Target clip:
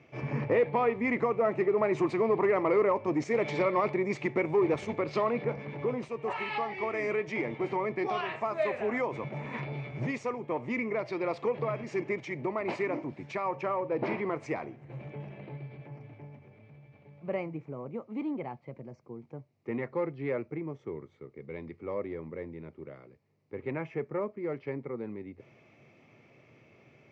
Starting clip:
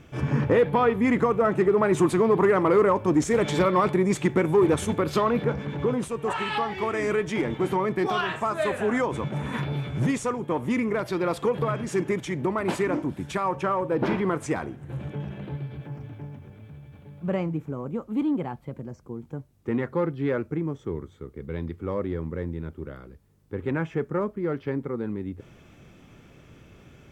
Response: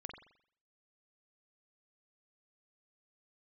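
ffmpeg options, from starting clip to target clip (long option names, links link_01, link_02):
-af "highpass=frequency=120:width=0.5412,highpass=frequency=120:width=1.3066,equalizer=frequency=180:width_type=q:width=4:gain=-9,equalizer=frequency=280:width_type=q:width=4:gain=-4,equalizer=frequency=640:width_type=q:width=4:gain=4,equalizer=frequency=1500:width_type=q:width=4:gain=-9,equalizer=frequency=2200:width_type=q:width=4:gain=8,equalizer=frequency=3400:width_type=q:width=4:gain=-9,lowpass=frequency=5100:width=0.5412,lowpass=frequency=5100:width=1.3066,volume=-5.5dB"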